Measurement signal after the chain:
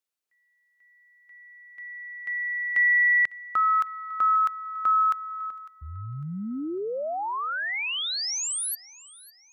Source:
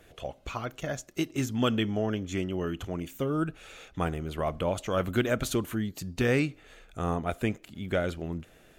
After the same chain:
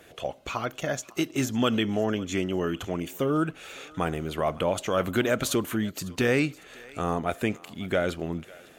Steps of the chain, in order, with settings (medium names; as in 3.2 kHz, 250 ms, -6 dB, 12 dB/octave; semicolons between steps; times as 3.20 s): high-pass 190 Hz 6 dB/octave; in parallel at -0.5 dB: peak limiter -23 dBFS; on the sum: thinning echo 552 ms, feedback 39%, high-pass 660 Hz, level -20 dB